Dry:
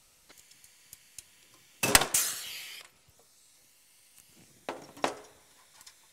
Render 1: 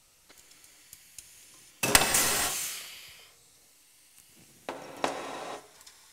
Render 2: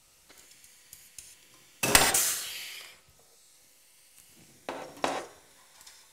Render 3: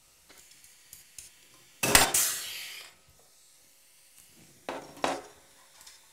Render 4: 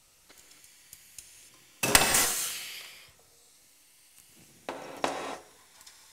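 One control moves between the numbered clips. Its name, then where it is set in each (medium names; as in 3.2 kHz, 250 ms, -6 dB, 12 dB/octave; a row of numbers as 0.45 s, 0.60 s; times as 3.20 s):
gated-style reverb, gate: 530 ms, 160 ms, 100 ms, 310 ms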